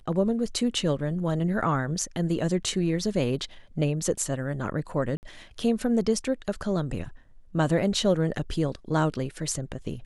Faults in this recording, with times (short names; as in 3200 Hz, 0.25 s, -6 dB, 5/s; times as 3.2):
5.17–5.23 gap 59 ms